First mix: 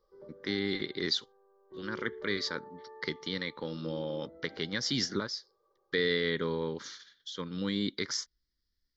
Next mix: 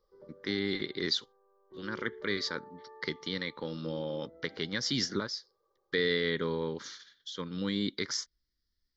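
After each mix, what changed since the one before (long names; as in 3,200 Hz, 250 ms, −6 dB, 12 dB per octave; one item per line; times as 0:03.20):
background: send −9.5 dB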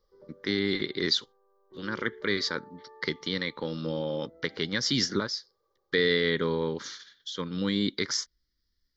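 speech +4.5 dB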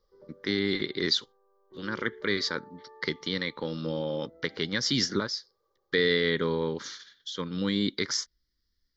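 nothing changed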